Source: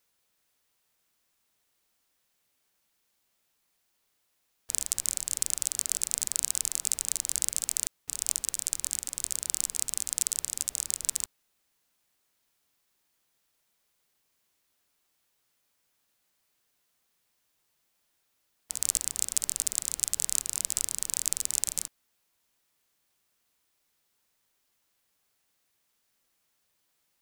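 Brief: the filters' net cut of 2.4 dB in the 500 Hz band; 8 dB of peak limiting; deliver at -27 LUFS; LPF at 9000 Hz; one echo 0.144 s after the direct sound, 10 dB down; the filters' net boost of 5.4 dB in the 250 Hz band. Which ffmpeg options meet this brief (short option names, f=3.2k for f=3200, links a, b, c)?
-af "lowpass=9k,equalizer=f=250:t=o:g=8.5,equalizer=f=500:t=o:g=-6,alimiter=limit=-10.5dB:level=0:latency=1,aecho=1:1:144:0.316,volume=7.5dB"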